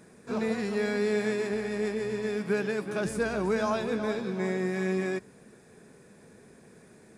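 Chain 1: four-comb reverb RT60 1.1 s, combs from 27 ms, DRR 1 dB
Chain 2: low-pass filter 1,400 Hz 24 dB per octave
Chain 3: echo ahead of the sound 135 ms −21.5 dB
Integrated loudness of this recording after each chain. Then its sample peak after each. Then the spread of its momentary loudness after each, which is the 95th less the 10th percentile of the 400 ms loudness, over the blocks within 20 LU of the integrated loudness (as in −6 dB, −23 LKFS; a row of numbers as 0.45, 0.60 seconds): −27.5, −30.5, −30.0 LKFS; −14.0, −17.0, −16.5 dBFS; 7, 4, 4 LU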